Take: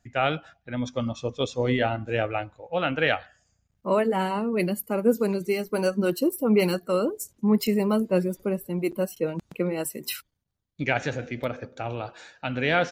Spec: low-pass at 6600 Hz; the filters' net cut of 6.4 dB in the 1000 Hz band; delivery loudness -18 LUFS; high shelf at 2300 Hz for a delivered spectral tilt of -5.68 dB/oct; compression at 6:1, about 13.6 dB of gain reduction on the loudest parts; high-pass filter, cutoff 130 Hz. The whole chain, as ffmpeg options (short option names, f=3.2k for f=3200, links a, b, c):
-af "highpass=130,lowpass=6.6k,equalizer=f=1k:t=o:g=-8,highshelf=f=2.3k:g=-8,acompressor=threshold=-32dB:ratio=6,volume=19.5dB"